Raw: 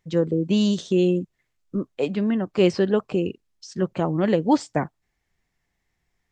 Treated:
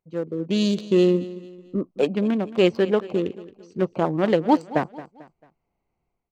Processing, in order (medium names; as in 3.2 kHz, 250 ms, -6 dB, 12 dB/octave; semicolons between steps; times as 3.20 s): local Wiener filter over 25 samples; bass shelf 230 Hz -11 dB; level rider gain up to 12 dB; feedback delay 222 ms, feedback 40%, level -17 dB; trim -4.5 dB